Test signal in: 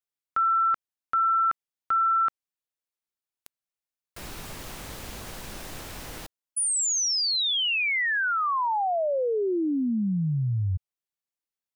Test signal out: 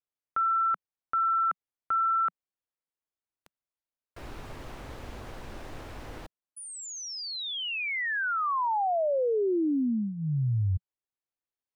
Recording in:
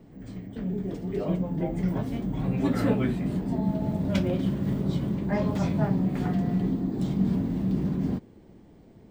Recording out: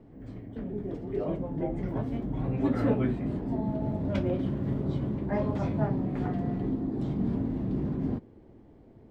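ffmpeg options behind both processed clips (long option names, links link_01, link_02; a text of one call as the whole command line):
ffmpeg -i in.wav -af "lowpass=frequency=1300:poles=1,equalizer=frequency=180:width_type=o:width=0.24:gain=-12" out.wav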